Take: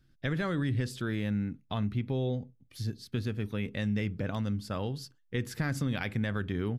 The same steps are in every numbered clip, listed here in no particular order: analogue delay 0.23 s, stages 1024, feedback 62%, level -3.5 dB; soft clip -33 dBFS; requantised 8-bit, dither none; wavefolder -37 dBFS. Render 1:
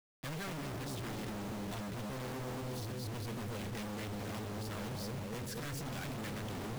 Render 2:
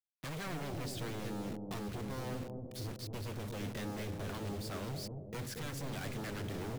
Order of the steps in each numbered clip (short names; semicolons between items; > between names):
analogue delay > soft clip > wavefolder > requantised; soft clip > requantised > wavefolder > analogue delay